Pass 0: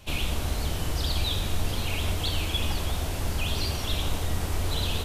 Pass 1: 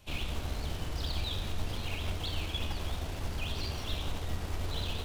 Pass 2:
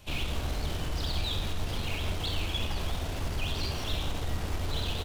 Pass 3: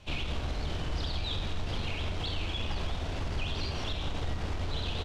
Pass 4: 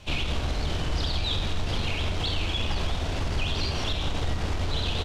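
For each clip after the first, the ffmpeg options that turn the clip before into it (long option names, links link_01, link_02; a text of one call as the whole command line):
ffmpeg -i in.wav -filter_complex "[0:a]acrossover=split=6100[link_01][link_02];[link_02]acompressor=threshold=-50dB:ratio=4:attack=1:release=60[link_03];[link_01][link_03]amix=inputs=2:normalize=0,asplit=2[link_04][link_05];[link_05]acrusher=bits=3:dc=4:mix=0:aa=0.000001,volume=-9.5dB[link_06];[link_04][link_06]amix=inputs=2:normalize=0,volume=-8.5dB" out.wav
ffmpeg -i in.wav -filter_complex "[0:a]asplit=2[link_01][link_02];[link_02]asoftclip=type=tanh:threshold=-36dB,volume=-4dB[link_03];[link_01][link_03]amix=inputs=2:normalize=0,asplit=2[link_04][link_05];[link_05]adelay=50,volume=-11dB[link_06];[link_04][link_06]amix=inputs=2:normalize=0,volume=1dB" out.wav
ffmpeg -i in.wav -af "lowpass=5400,alimiter=limit=-24dB:level=0:latency=1:release=74" out.wav
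ffmpeg -i in.wav -af "highshelf=frequency=5400:gain=5,volume=5.5dB" out.wav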